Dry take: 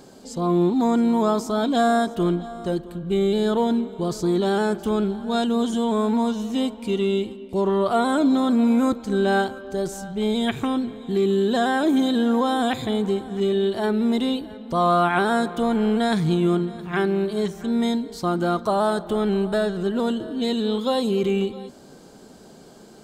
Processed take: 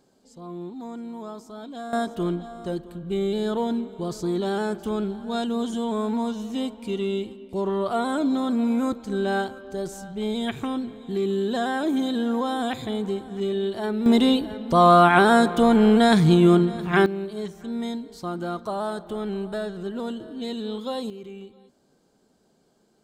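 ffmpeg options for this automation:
-af "asetnsamples=n=441:p=0,asendcmd='1.93 volume volume -4.5dB;14.06 volume volume 4.5dB;17.06 volume volume -7.5dB;21.1 volume volume -18dB',volume=-16.5dB"

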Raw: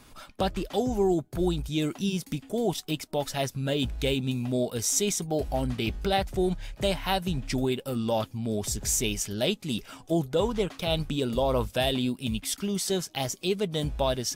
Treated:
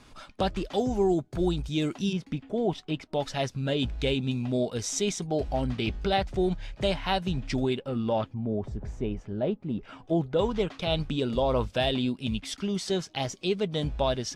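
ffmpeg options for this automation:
-af "asetnsamples=n=441:p=0,asendcmd='2.13 lowpass f 2800;3.13 lowpass f 5200;7.79 lowpass f 2600;8.34 lowpass f 1000;9.83 lowpass f 2700;10.39 lowpass f 4900',lowpass=6.7k"

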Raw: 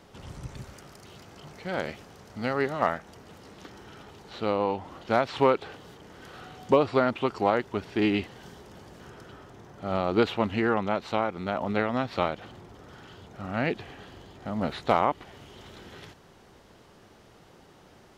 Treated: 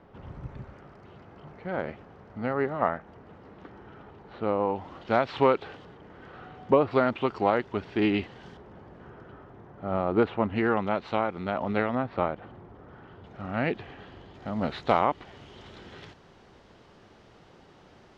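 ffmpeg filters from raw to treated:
-af "asetnsamples=n=441:p=0,asendcmd='4.76 lowpass f 3900;5.85 lowpass f 2100;6.91 lowpass f 3700;8.57 lowpass f 1700;10.56 lowpass f 3400;11.95 lowpass f 1600;13.24 lowpass f 3200;14.34 lowpass f 5000',lowpass=1.7k"

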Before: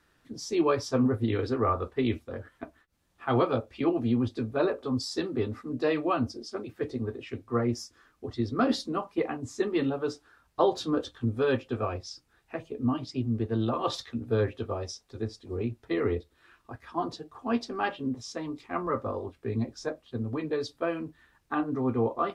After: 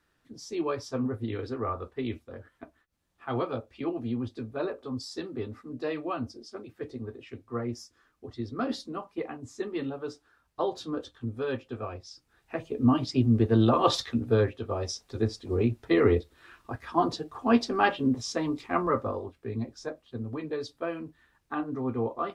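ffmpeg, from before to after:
-af "volume=14.5dB,afade=t=in:st=12.09:d=0.96:silence=0.251189,afade=t=out:st=14.09:d=0.51:silence=0.375837,afade=t=in:st=14.6:d=0.41:silence=0.398107,afade=t=out:st=18.61:d=0.72:silence=0.354813"

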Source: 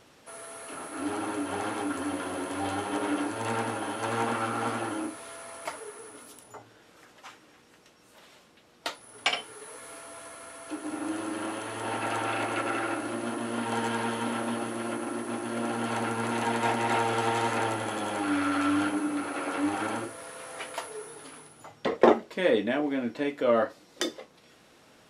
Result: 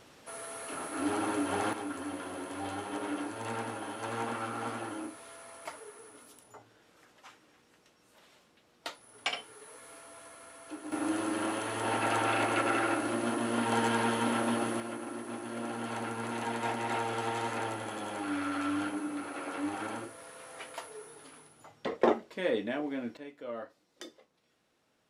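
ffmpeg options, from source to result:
-af "asetnsamples=n=441:p=0,asendcmd='1.73 volume volume -6.5dB;10.92 volume volume 1dB;14.8 volume volume -6.5dB;23.17 volume volume -16.5dB',volume=0.5dB"

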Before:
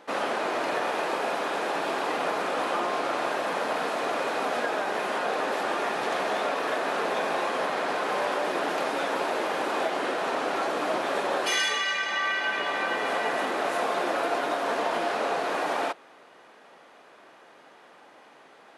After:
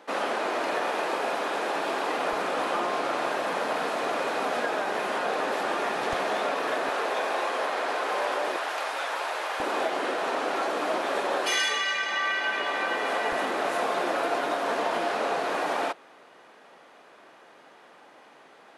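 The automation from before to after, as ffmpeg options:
-af "asetnsamples=n=441:p=0,asendcmd='2.33 highpass f 52;6.13 highpass f 120;6.89 highpass f 350;8.56 highpass f 740;9.6 highpass f 210;13.32 highpass f 61',highpass=180"

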